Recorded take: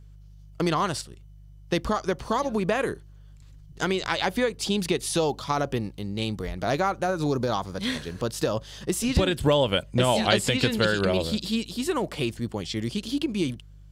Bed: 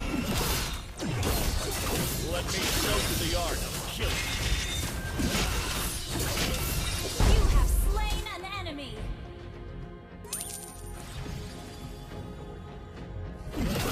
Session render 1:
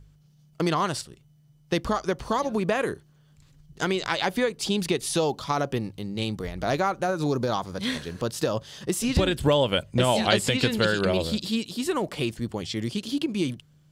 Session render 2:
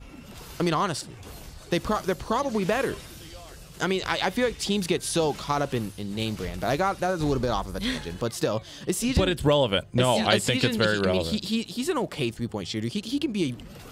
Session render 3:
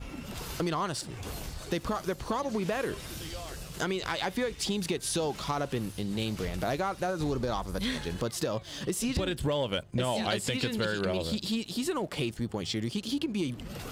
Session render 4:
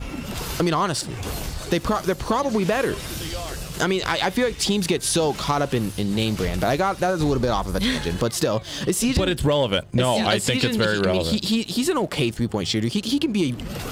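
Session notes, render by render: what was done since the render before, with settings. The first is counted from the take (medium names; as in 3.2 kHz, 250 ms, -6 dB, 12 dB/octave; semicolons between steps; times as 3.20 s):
de-hum 50 Hz, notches 2
add bed -14.5 dB
compression 2.5:1, threshold -35 dBFS, peak gain reduction 12.5 dB; waveshaping leveller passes 1
trim +9.5 dB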